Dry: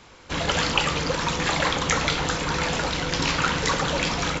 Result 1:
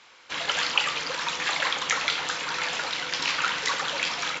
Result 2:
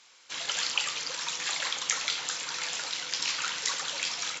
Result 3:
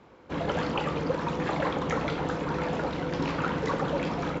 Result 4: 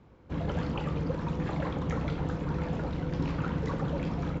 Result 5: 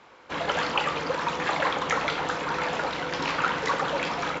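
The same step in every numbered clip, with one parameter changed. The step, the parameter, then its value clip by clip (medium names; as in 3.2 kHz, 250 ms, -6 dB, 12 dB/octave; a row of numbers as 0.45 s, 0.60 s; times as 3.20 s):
band-pass filter, frequency: 2.8 kHz, 8 kHz, 330 Hz, 120 Hz, 890 Hz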